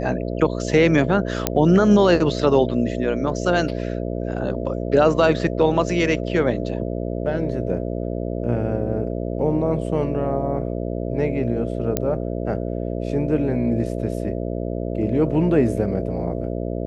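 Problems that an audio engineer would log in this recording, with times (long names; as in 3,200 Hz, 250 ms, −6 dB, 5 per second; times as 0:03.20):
mains buzz 60 Hz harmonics 11 −26 dBFS
0:01.47: click −2 dBFS
0:11.97: click −5 dBFS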